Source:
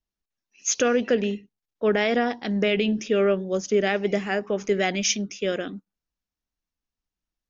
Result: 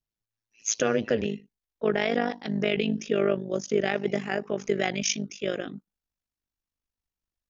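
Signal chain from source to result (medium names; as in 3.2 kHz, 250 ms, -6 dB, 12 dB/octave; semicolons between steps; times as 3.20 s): AM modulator 110 Hz, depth 70%, from 1.24 s modulator 50 Hz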